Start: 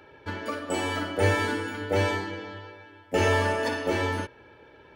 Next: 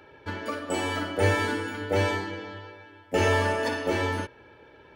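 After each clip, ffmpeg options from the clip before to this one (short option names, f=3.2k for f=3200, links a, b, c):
-af anull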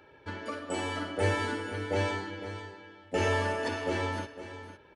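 -af "aecho=1:1:505:0.251,aresample=22050,aresample=44100,volume=-5dB"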